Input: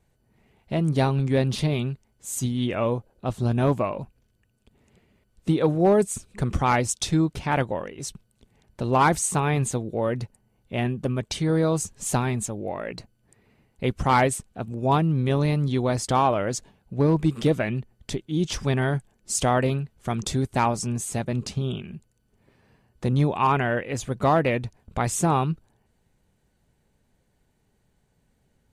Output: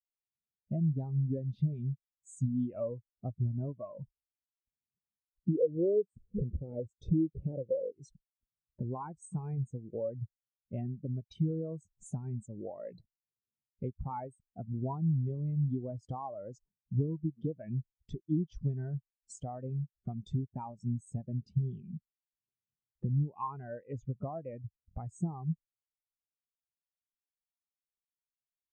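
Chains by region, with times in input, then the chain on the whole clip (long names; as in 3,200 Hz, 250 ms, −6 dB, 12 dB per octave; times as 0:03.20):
0:05.55–0:07.92: downward compressor 2 to 1, threshold −34 dBFS + low shelf with overshoot 720 Hz +11 dB, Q 3
whole clip: low-pass filter 10,000 Hz; downward compressor 16 to 1, threshold −31 dBFS; every bin expanded away from the loudest bin 2.5 to 1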